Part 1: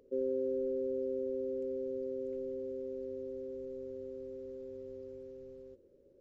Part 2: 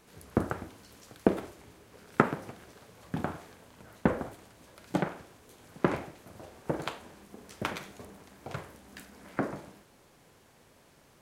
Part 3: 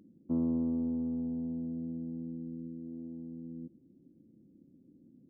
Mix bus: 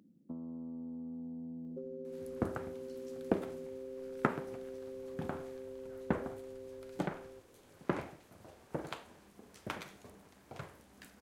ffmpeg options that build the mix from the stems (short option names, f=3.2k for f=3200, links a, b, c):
-filter_complex "[0:a]adelay=1650,volume=-1.5dB[a];[1:a]adelay=2050,volume=-7.5dB[b];[2:a]highpass=160,equalizer=f=360:w=1.5:g=-8.5,volume=-0.5dB[c];[a][c]amix=inputs=2:normalize=0,acompressor=threshold=-41dB:ratio=10,volume=0dB[d];[b][d]amix=inputs=2:normalize=0"